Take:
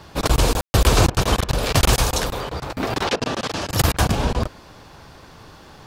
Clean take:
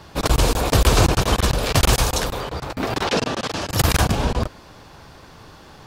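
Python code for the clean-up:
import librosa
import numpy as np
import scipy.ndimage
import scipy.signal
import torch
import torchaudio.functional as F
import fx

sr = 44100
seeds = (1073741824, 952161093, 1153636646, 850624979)

y = fx.fix_declick_ar(x, sr, threshold=6.5)
y = fx.fix_ambience(y, sr, seeds[0], print_start_s=4.48, print_end_s=4.98, start_s=0.61, end_s=0.74)
y = fx.fix_interpolate(y, sr, at_s=(1.1, 1.44, 3.16, 3.92), length_ms=44.0)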